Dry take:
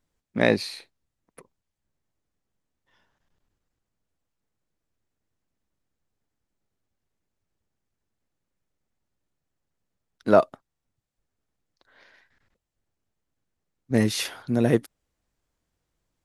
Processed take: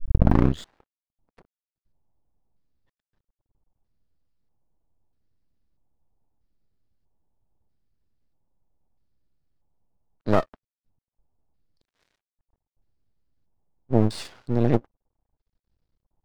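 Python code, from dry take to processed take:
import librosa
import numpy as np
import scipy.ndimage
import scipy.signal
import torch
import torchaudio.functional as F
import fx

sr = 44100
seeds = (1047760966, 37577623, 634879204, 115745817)

y = fx.tape_start_head(x, sr, length_s=0.77)
y = fx.tilt_eq(y, sr, slope=-3.0)
y = fx.filter_lfo_lowpass(y, sr, shape='square', hz=0.78, low_hz=870.0, high_hz=4700.0, q=3.5)
y = np.maximum(y, 0.0)
y = y * 10.0 ** (-4.0 / 20.0)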